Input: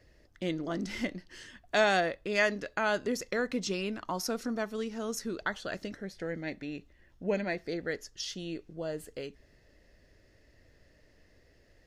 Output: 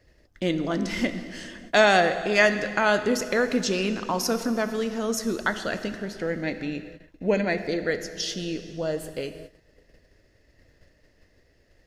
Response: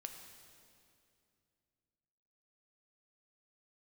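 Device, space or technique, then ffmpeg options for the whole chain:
keyed gated reverb: -filter_complex "[0:a]asplit=3[link_01][link_02][link_03];[1:a]atrim=start_sample=2205[link_04];[link_02][link_04]afir=irnorm=-1:irlink=0[link_05];[link_03]apad=whole_len=523051[link_06];[link_05][link_06]sidechaingate=range=-33dB:threshold=-58dB:ratio=16:detection=peak,volume=8dB[link_07];[link_01][link_07]amix=inputs=2:normalize=0"

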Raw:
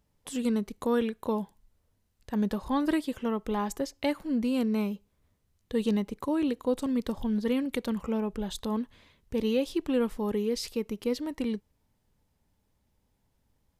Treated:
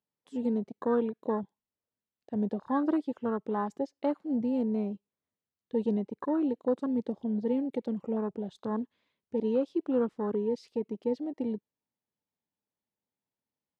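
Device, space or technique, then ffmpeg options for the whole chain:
over-cleaned archive recording: -af "highpass=200,lowpass=5600,afwtdn=0.02"

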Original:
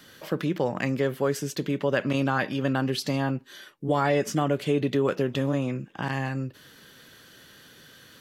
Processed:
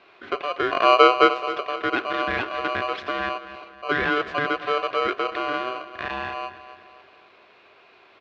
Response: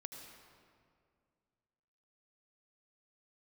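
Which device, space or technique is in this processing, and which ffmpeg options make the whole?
ring modulator pedal into a guitar cabinet: -filter_complex "[0:a]asplit=3[link_01][link_02][link_03];[link_01]afade=type=out:start_time=0.71:duration=0.02[link_04];[link_02]lowshelf=frequency=550:width_type=q:width=1.5:gain=11.5,afade=type=in:start_time=0.71:duration=0.02,afade=type=out:start_time=1.27:duration=0.02[link_05];[link_03]afade=type=in:start_time=1.27:duration=0.02[link_06];[link_04][link_05][link_06]amix=inputs=3:normalize=0,asplit=2[link_07][link_08];[link_08]adelay=264,lowpass=frequency=2000:poles=1,volume=-13dB,asplit=2[link_09][link_10];[link_10]adelay=264,lowpass=frequency=2000:poles=1,volume=0.46,asplit=2[link_11][link_12];[link_12]adelay=264,lowpass=frequency=2000:poles=1,volume=0.46,asplit=2[link_13][link_14];[link_14]adelay=264,lowpass=frequency=2000:poles=1,volume=0.46,asplit=2[link_15][link_16];[link_16]adelay=264,lowpass=frequency=2000:poles=1,volume=0.46[link_17];[link_07][link_09][link_11][link_13][link_15][link_17]amix=inputs=6:normalize=0,aeval=exprs='val(0)*sgn(sin(2*PI*880*n/s))':channel_layout=same,highpass=79,equalizer=frequency=150:width_type=q:width=4:gain=-4,equalizer=frequency=390:width_type=q:width=4:gain=9,equalizer=frequency=1600:width_type=q:width=4:gain=7,lowpass=frequency=3400:width=0.5412,lowpass=frequency=3400:width=1.3066,volume=-2dB"

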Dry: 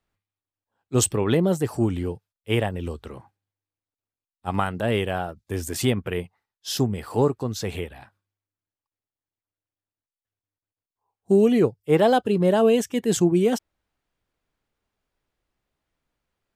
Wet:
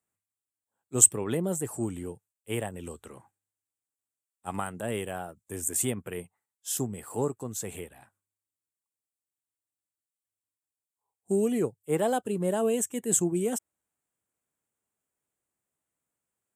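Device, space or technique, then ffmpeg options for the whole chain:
budget condenser microphone: -filter_complex "[0:a]highpass=110,highshelf=frequency=6200:width_type=q:width=3:gain=9.5,asettb=1/sr,asplit=3[link_01][link_02][link_03];[link_01]atrim=end=2.774[link_04];[link_02]atrim=start=2.77:end=4.57,asetpts=PTS-STARTPTS,afade=type=in:duration=0.004:curve=qsin,afade=type=out:start_time=1.796:duration=0.004:curve=qsin,equalizer=frequency=2800:width=0.32:gain=3.5[link_05];[link_03]atrim=start=4.566[link_06];[link_04][link_05]acrossfade=duration=0.004:curve1=hsin:curve2=qsin[link_07];[link_07][link_06]acrossfade=duration=0.004:curve1=qsin:curve2=hsin,volume=-8.5dB"

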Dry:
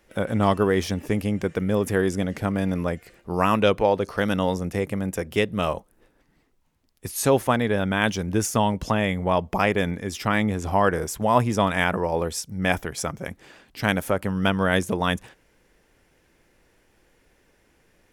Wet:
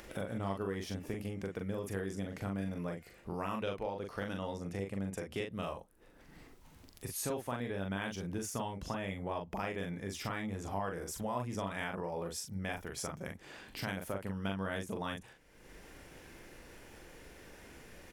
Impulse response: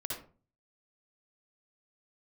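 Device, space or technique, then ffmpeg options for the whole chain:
upward and downward compression: -filter_complex "[0:a]acompressor=mode=upward:threshold=-34dB:ratio=2.5,acompressor=threshold=-32dB:ratio=3,asettb=1/sr,asplit=3[link_01][link_02][link_03];[link_01]atrim=end=4.214[link_04];[link_02]atrim=start=4.21:end=5.49,asetpts=PTS-STARTPTS,afade=type=in:duration=0.004:curve=qsin,afade=type=out:start_time=1.276:duration=0.004:curve=qsin,lowpass=9900[link_05];[link_03]atrim=start=5.486[link_06];[link_04][link_05]acrossfade=duration=0.004:curve1=hsin:curve2=qsin[link_07];[link_07][link_06]acrossfade=duration=0.004:curve1=qsin:curve2=hsin,asplit=2[link_08][link_09];[link_09]adelay=41,volume=-4dB[link_10];[link_08][link_10]amix=inputs=2:normalize=0,volume=-7dB"

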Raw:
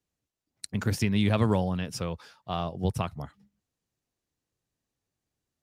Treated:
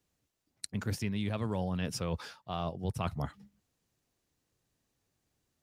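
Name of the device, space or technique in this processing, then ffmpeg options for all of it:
compression on the reversed sound: -af "areverse,acompressor=threshold=-36dB:ratio=8,areverse,volume=5.5dB"

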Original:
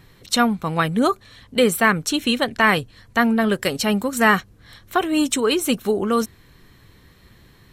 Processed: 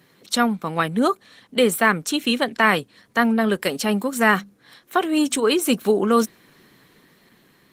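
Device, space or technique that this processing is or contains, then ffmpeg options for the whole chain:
video call: -filter_complex "[0:a]asettb=1/sr,asplit=3[link_01][link_02][link_03];[link_01]atrim=end=0.984[link_04];[link_02]atrim=start=0.98:end=2.3,asetpts=PTS-STARTPTS,afade=type=in:duration=0.004:curve=qsin,afade=type=out:start_time=1.316:duration=0.004:curve=qsin,asubboost=boost=3:cutoff=110[link_05];[link_03]atrim=start=2.296[link_06];[link_04][link_05]acrossfade=duration=0.004:curve1=hsin:curve2=qsin[link_07];[link_07][link_06]acrossfade=duration=0.004:curve1=qsin:curve2=hsin,asplit=3[link_08][link_09][link_10];[link_08]afade=type=out:start_time=4.37:duration=0.02[link_11];[link_09]bandreject=frequency=50:width_type=h:width=6,bandreject=frequency=100:width_type=h:width=6,bandreject=frequency=150:width_type=h:width=6,bandreject=frequency=200:width_type=h:width=6,bandreject=frequency=250:width_type=h:width=6,afade=type=in:start_time=4.37:duration=0.02,afade=type=out:start_time=5.42:duration=0.02[link_12];[link_10]afade=type=in:start_time=5.42:duration=0.02[link_13];[link_11][link_12][link_13]amix=inputs=3:normalize=0,highpass=frequency=170:width=0.5412,highpass=frequency=170:width=1.3066,dynaudnorm=framelen=370:gausssize=7:maxgain=14.5dB,volume=-1dB" -ar 48000 -c:a libopus -b:a 20k

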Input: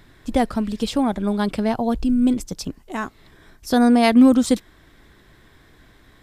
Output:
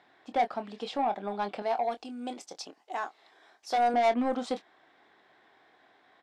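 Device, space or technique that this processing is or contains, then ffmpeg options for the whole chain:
intercom: -filter_complex "[0:a]asettb=1/sr,asplit=3[link_01][link_02][link_03];[link_01]atrim=end=1.624[link_04];[link_02]atrim=start=1.62:end=3.94,asetpts=PTS-STARTPTS,afade=type=in:duration=0.004:curve=qsin,afade=type=out:start_time=2.316:duration=0.004:curve=qsin,bass=frequency=250:gain=-12,treble=frequency=4000:gain=9[link_05];[link_03]atrim=start=3.936[link_06];[link_04][link_05]acrossfade=duration=0.004:curve1=hsin:curve2=qsin[link_07];[link_07][link_06]acrossfade=duration=0.004:curve1=qsin:curve2=hsin,highpass=410,lowpass=3800,equalizer=frequency=760:width_type=o:width=0.4:gain=11.5,asoftclip=type=tanh:threshold=-12.5dB,asplit=2[link_08][link_09];[link_09]adelay=25,volume=-10dB[link_10];[link_08][link_10]amix=inputs=2:normalize=0,volume=-8dB"

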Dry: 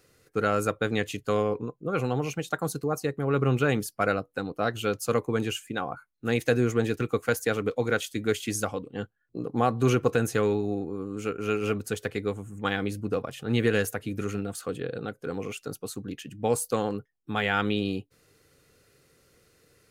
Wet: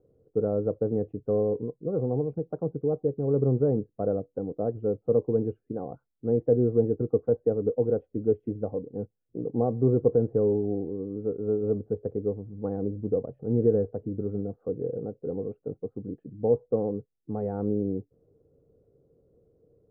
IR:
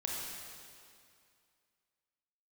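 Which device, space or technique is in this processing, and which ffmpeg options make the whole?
under water: -af "lowpass=frequency=620:width=0.5412,lowpass=frequency=620:width=1.3066,equalizer=frequency=460:width_type=o:width=0.23:gain=5"

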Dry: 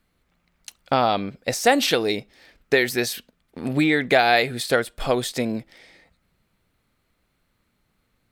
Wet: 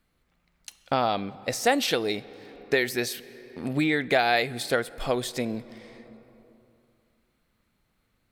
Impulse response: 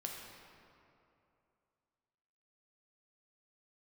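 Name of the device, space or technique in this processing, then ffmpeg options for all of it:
compressed reverb return: -filter_complex "[0:a]asplit=2[link_01][link_02];[1:a]atrim=start_sample=2205[link_03];[link_02][link_03]afir=irnorm=-1:irlink=0,acompressor=threshold=-32dB:ratio=6,volume=-4.5dB[link_04];[link_01][link_04]amix=inputs=2:normalize=0,volume=-5.5dB"

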